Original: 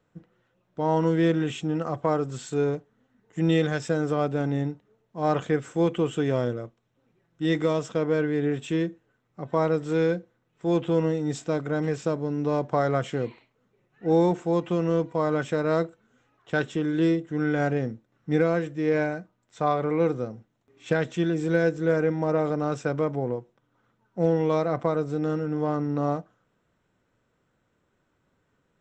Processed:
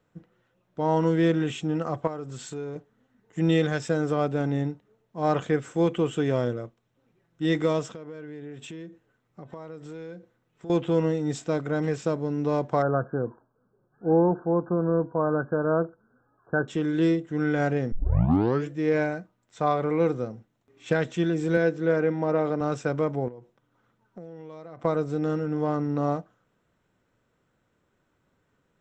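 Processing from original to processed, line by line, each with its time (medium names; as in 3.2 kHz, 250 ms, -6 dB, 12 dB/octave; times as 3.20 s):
2.07–2.76 s: compression 2.5:1, threshold -35 dBFS
7.94–10.70 s: compression 5:1, threshold -38 dBFS
12.82–16.68 s: brick-wall FIR low-pass 1.7 kHz
17.92 s: tape start 0.78 s
21.57–22.61 s: band-pass 140–4800 Hz
23.28–24.85 s: compression 16:1, threshold -37 dBFS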